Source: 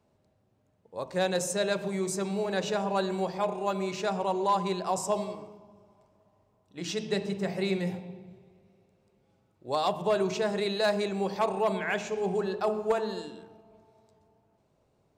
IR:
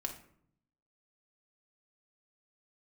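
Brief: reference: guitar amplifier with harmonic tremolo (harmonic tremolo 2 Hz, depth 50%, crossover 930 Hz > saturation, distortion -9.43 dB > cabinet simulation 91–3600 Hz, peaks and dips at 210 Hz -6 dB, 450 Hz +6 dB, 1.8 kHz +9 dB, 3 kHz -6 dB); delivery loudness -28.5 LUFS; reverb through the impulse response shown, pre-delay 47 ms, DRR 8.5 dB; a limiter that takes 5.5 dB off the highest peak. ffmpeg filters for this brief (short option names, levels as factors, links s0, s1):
-filter_complex "[0:a]alimiter=limit=0.0708:level=0:latency=1,asplit=2[s0][s1];[1:a]atrim=start_sample=2205,adelay=47[s2];[s1][s2]afir=irnorm=-1:irlink=0,volume=0.376[s3];[s0][s3]amix=inputs=2:normalize=0,acrossover=split=930[s4][s5];[s4]aeval=exprs='val(0)*(1-0.5/2+0.5/2*cos(2*PI*2*n/s))':c=same[s6];[s5]aeval=exprs='val(0)*(1-0.5/2-0.5/2*cos(2*PI*2*n/s))':c=same[s7];[s6][s7]amix=inputs=2:normalize=0,asoftclip=threshold=0.0178,highpass=91,equalizer=f=210:t=q:w=4:g=-6,equalizer=f=450:t=q:w=4:g=6,equalizer=f=1800:t=q:w=4:g=9,equalizer=f=3000:t=q:w=4:g=-6,lowpass=f=3600:w=0.5412,lowpass=f=3600:w=1.3066,volume=2.99"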